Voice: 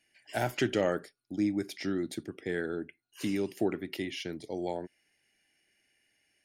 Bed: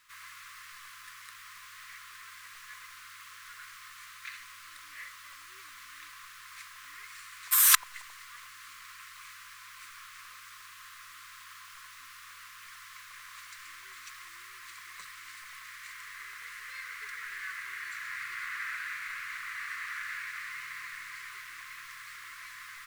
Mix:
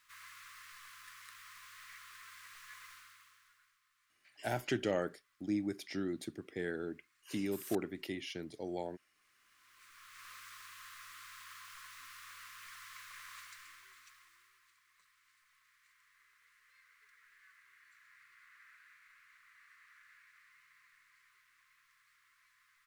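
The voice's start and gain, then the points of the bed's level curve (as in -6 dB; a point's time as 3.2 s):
4.10 s, -5.5 dB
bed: 2.91 s -5.5 dB
3.81 s -28.5 dB
9.13 s -28.5 dB
10.3 s -3 dB
13.33 s -3 dB
14.81 s -24.5 dB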